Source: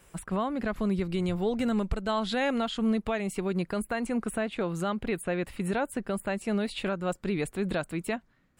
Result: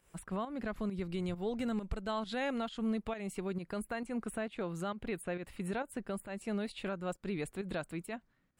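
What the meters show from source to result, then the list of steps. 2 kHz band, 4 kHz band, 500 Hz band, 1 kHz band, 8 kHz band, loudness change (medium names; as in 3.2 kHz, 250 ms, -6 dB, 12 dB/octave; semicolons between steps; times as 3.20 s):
-8.0 dB, -9.0 dB, -8.0 dB, -8.0 dB, -8.0 dB, -8.0 dB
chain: volume shaper 134 bpm, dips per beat 1, -10 dB, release 167 ms; trim -7.5 dB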